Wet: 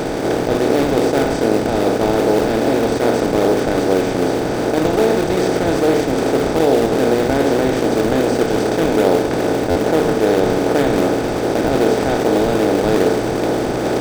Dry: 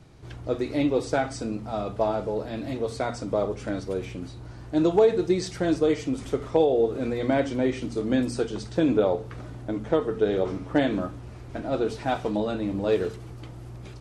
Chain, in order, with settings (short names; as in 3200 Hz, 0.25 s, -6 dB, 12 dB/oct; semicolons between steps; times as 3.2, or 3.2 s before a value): per-bin compression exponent 0.2; notches 50/100/150/200/250/300/350/400/450 Hz; in parallel at -8.5 dB: decimation with a swept rate 42×, swing 160% 2.5 Hz; on the sum: stuck buffer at 9.7, samples 512, times 4; attack slew limiter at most 150 dB/s; gain -1.5 dB